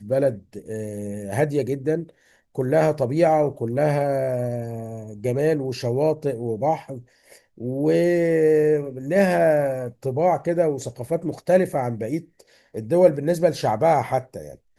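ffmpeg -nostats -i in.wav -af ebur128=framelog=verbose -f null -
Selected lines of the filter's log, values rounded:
Integrated loudness:
  I:         -22.1 LUFS
  Threshold: -32.7 LUFS
Loudness range:
  LRA:         4.0 LU
  Threshold: -42.5 LUFS
  LRA low:   -24.6 LUFS
  LRA high:  -20.6 LUFS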